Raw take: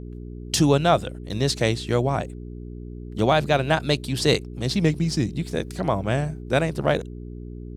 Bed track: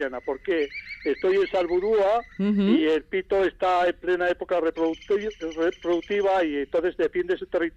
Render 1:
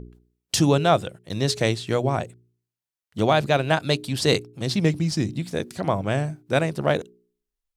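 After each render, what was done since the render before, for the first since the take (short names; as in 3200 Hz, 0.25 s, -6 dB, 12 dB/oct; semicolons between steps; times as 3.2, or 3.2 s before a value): de-hum 60 Hz, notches 7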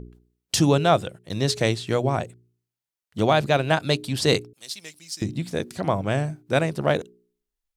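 4.53–5.22 differentiator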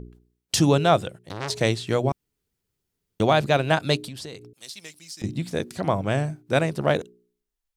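1.21–1.61 core saturation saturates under 2400 Hz; 2.12–3.2 room tone; 4.07–5.24 compressor 16:1, threshold -33 dBFS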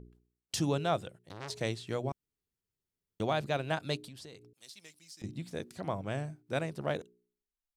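gain -12 dB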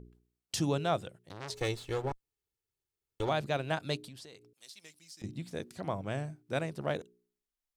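1.54–3.29 minimum comb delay 2.3 ms; 4.2–4.84 low shelf 260 Hz -8 dB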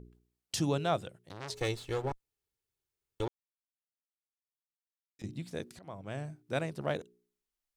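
3.28–5.19 mute; 5.79–6.39 fade in, from -18 dB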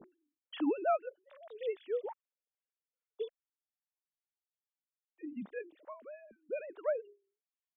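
sine-wave speech; photocell phaser 2.4 Hz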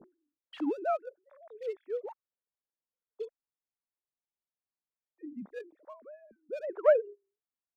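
Wiener smoothing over 15 samples; 6.63–7.15 spectral gain 330–3200 Hz +11 dB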